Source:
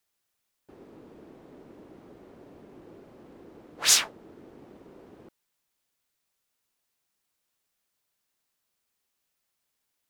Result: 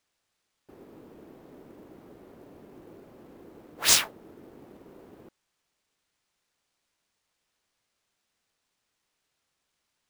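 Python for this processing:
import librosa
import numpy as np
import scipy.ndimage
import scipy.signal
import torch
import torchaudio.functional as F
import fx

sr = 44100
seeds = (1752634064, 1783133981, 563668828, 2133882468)

y = fx.sample_hold(x, sr, seeds[0], rate_hz=15000.0, jitter_pct=20)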